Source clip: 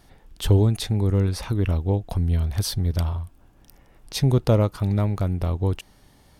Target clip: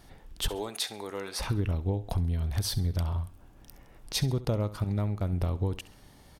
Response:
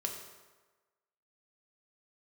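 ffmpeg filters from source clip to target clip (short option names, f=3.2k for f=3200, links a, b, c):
-filter_complex "[0:a]asettb=1/sr,asplit=3[a][b][c];[a]atrim=end=0.484[d];[b]atrim=start=0.48:end=1.39,asetpts=PTS-STARTPTS,afade=t=in:d=0.004:c=qsin,afade=t=out:st=0.906:d=0.004:c=qsin,highpass=700[e];[c]atrim=start=1.386[f];[d][e]acrossfade=d=0.004:c1=hsin:c2=qsin[g];[g][f]acrossfade=d=0.004:c1=qsin:c2=hsin,asettb=1/sr,asplit=3[h][i][j];[h]atrim=end=4.844[k];[i]atrim=start=4.84:end=5.33,asetpts=PTS-STARTPTS,afade=t=in:d=0.004:c=qsin,afade=t=out:st=0.486:d=0.004:c=qsin,agate=range=-33dB:threshold=-18dB:ratio=3:detection=peak[l];[j]atrim=start=5.326[m];[k][l]acrossfade=d=0.004:c1=hsin:c2=qsin[n];[n][m]acrossfade=d=0.004:c1=qsin:c2=hsin,acompressor=threshold=-25dB:ratio=6,aecho=1:1:67|134|201:0.15|0.0539|0.0194"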